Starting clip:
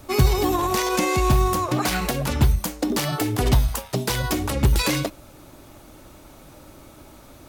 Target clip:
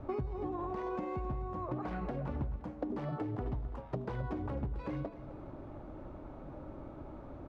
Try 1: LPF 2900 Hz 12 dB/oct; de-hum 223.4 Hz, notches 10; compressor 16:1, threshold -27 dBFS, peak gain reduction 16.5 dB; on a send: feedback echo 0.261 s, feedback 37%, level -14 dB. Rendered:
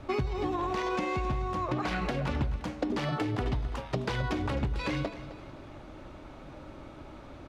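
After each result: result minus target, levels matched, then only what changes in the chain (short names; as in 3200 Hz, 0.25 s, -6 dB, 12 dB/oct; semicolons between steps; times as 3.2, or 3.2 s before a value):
4000 Hz band +14.0 dB; compressor: peak gain reduction -6.5 dB
change: LPF 1000 Hz 12 dB/oct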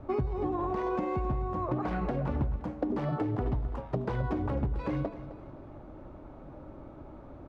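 compressor: peak gain reduction -6.5 dB
change: compressor 16:1, threshold -34 dBFS, peak gain reduction 23 dB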